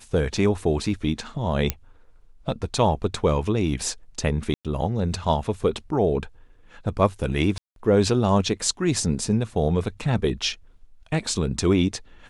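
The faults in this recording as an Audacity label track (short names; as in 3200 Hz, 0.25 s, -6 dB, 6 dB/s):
1.700000	1.700000	pop -7 dBFS
4.540000	4.650000	gap 0.107 s
7.580000	7.760000	gap 0.182 s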